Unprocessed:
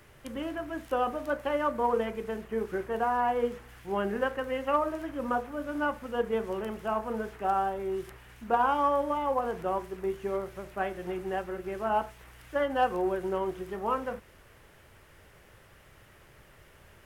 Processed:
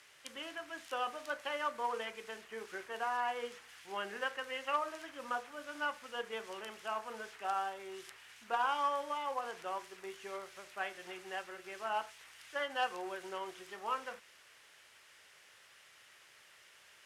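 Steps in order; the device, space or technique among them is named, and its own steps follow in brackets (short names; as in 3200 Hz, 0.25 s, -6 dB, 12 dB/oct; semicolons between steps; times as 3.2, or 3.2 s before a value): piezo pickup straight into a mixer (LPF 5400 Hz 12 dB/oct; differentiator); gain +10 dB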